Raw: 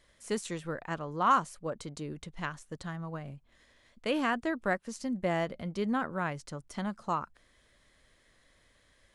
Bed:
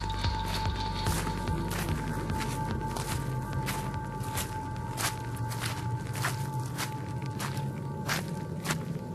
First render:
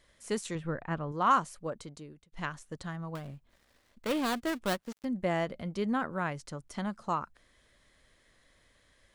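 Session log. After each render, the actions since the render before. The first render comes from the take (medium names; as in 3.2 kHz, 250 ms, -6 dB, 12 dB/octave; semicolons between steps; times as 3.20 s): 0.55–1.12 s: tone controls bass +6 dB, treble -14 dB; 1.63–2.32 s: fade out linear; 3.15–5.05 s: dead-time distortion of 0.2 ms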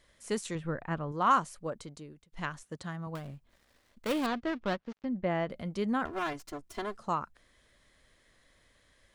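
2.63–3.07 s: high-pass 85 Hz; 4.26–5.50 s: distance through air 200 m; 6.05–6.98 s: comb filter that takes the minimum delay 2.9 ms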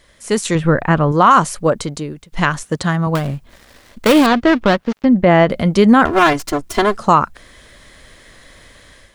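level rider gain up to 8.5 dB; loudness maximiser +13.5 dB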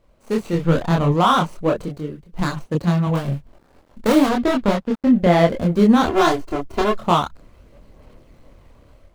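median filter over 25 samples; chorus voices 4, 1.4 Hz, delay 26 ms, depth 3 ms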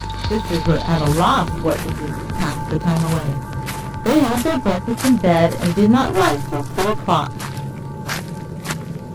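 add bed +6.5 dB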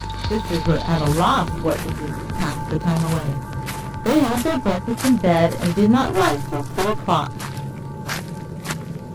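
trim -2 dB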